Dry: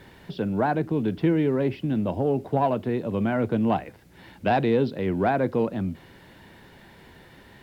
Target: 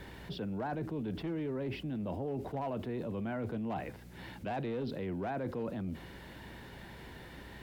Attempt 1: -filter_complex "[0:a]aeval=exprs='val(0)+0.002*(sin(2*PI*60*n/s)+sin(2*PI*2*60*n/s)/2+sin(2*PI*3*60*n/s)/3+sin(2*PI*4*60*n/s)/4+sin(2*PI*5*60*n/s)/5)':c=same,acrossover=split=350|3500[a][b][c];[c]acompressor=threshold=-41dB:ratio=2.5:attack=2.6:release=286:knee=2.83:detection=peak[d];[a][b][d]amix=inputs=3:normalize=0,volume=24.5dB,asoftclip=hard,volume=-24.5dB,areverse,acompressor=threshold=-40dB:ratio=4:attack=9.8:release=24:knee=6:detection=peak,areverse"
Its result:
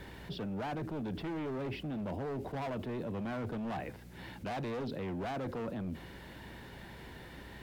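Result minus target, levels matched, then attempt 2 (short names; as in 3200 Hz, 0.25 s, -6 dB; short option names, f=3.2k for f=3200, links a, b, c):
overloaded stage: distortion +15 dB
-filter_complex "[0:a]aeval=exprs='val(0)+0.002*(sin(2*PI*60*n/s)+sin(2*PI*2*60*n/s)/2+sin(2*PI*3*60*n/s)/3+sin(2*PI*4*60*n/s)/4+sin(2*PI*5*60*n/s)/5)':c=same,acrossover=split=350|3500[a][b][c];[c]acompressor=threshold=-41dB:ratio=2.5:attack=2.6:release=286:knee=2.83:detection=peak[d];[a][b][d]amix=inputs=3:normalize=0,volume=15.5dB,asoftclip=hard,volume=-15.5dB,areverse,acompressor=threshold=-40dB:ratio=4:attack=9.8:release=24:knee=6:detection=peak,areverse"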